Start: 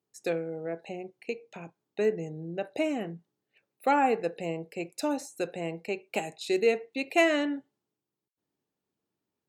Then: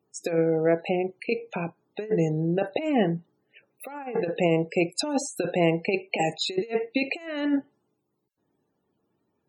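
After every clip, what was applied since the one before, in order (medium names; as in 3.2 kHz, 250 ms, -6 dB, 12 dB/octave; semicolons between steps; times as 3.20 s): compressor with a negative ratio -32 dBFS, ratio -0.5; loudest bins only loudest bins 64; trim +8.5 dB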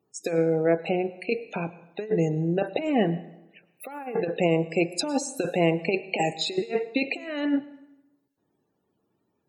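plate-style reverb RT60 0.96 s, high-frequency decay 0.8×, pre-delay 90 ms, DRR 17.5 dB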